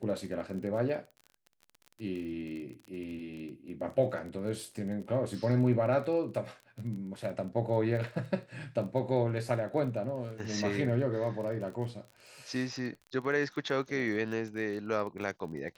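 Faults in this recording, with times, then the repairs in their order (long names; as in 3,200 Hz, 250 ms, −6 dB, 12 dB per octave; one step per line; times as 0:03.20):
surface crackle 26 per second −40 dBFS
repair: click removal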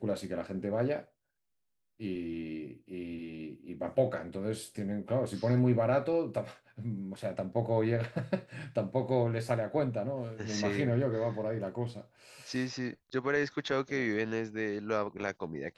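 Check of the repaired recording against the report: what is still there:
none of them is left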